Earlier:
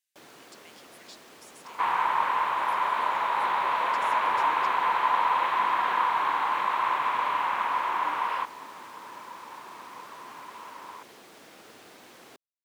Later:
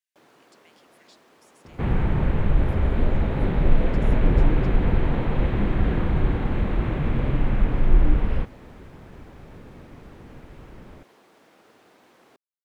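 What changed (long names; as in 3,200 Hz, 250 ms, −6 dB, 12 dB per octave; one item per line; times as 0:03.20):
first sound −3.5 dB
second sound: remove high-pass with resonance 1,000 Hz, resonance Q 9.3
master: add high-shelf EQ 2,500 Hz −9 dB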